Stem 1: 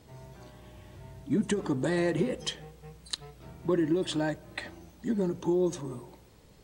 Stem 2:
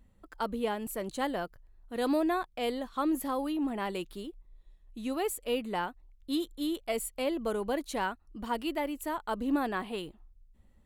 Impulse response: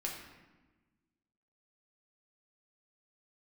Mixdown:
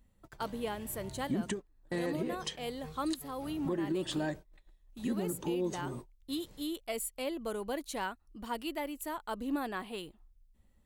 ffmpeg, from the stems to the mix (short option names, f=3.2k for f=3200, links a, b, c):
-filter_complex "[0:a]volume=0dB[a];[1:a]highshelf=f=3.4k:g=6,volume=-5dB,asplit=2[b][c];[c]apad=whole_len=292499[d];[a][d]sidechaingate=range=-53dB:threshold=-53dB:ratio=16:detection=peak[e];[e][b]amix=inputs=2:normalize=0,alimiter=level_in=0.5dB:limit=-24dB:level=0:latency=1:release=401,volume=-0.5dB"